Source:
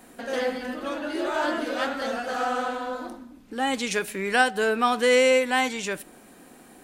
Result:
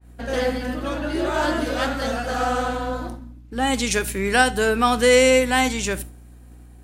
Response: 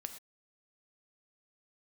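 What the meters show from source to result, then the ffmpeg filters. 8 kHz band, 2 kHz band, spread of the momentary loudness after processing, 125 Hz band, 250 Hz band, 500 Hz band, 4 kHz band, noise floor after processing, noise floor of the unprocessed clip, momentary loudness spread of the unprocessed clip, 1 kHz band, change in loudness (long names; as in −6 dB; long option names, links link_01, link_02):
+8.0 dB, +3.0 dB, 13 LU, can't be measured, +6.0 dB, +3.5 dB, +4.5 dB, −45 dBFS, −51 dBFS, 13 LU, +3.0 dB, +4.0 dB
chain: -filter_complex "[0:a]aeval=exprs='val(0)+0.00891*(sin(2*PI*60*n/s)+sin(2*PI*2*60*n/s)/2+sin(2*PI*3*60*n/s)/3+sin(2*PI*4*60*n/s)/4+sin(2*PI*5*60*n/s)/5)':channel_layout=same,agate=range=-33dB:threshold=-33dB:ratio=3:detection=peak,asplit=2[link_01][link_02];[link_02]lowshelf=frequency=350:gain=12[link_03];[1:a]atrim=start_sample=2205,asetrate=66150,aresample=44100[link_04];[link_03][link_04]afir=irnorm=-1:irlink=0,volume=-1.5dB[link_05];[link_01][link_05]amix=inputs=2:normalize=0,adynamicequalizer=threshold=0.0178:dfrequency=4300:dqfactor=0.7:tfrequency=4300:tqfactor=0.7:attack=5:release=100:ratio=0.375:range=3:mode=boostabove:tftype=highshelf"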